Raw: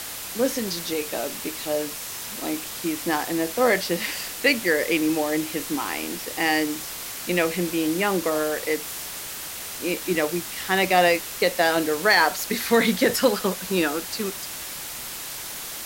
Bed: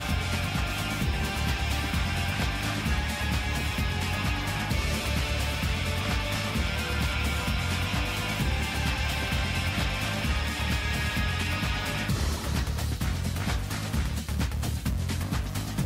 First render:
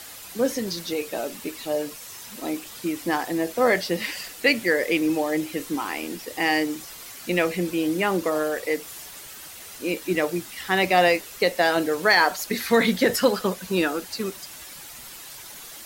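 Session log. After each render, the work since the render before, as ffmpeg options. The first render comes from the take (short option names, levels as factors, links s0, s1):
-af "afftdn=nr=9:nf=-35"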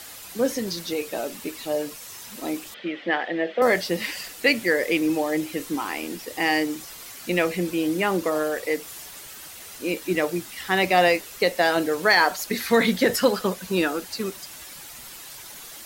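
-filter_complex "[0:a]asettb=1/sr,asplit=3[s0][s1][s2];[s0]atrim=end=2.744[s3];[s1]atrim=start=2.74:end=3.62,asetpts=PTS-STARTPTS,afade=t=in:d=0.004:c=qsin,afade=t=out:st=0.876:d=0.004:c=qsin,highpass=f=190:w=0.5412,highpass=f=190:w=1.3066,equalizer=f=280:t=q:w=4:g=-8,equalizer=f=570:t=q:w=4:g=7,equalizer=f=1000:t=q:w=4:g=-8,equalizer=f=1900:t=q:w=4:g=8,equalizer=f=3200:t=q:w=4:g=7,lowpass=f=3400:w=0.5412,lowpass=f=3400:w=1.3066[s4];[s2]atrim=start=3.616[s5];[s3][s4]acrossfade=d=0.004:c1=hsin:c2=qsin[s6];[s6][s5]acrossfade=d=0.004:c1=qsin:c2=hsin"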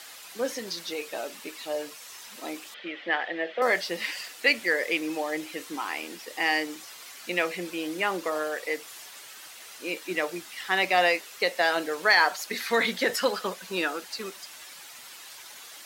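-af "highpass=f=880:p=1,highshelf=f=8100:g=-10"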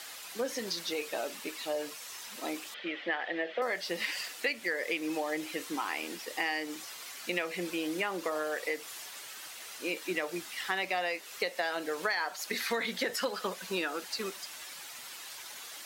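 -af "acompressor=threshold=0.0355:ratio=6"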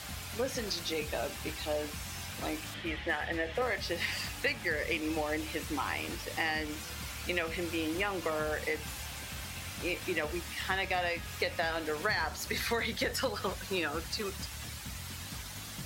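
-filter_complex "[1:a]volume=0.158[s0];[0:a][s0]amix=inputs=2:normalize=0"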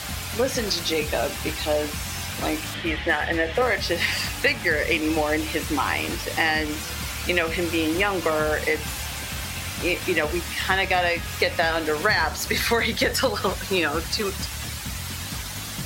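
-af "volume=3.35"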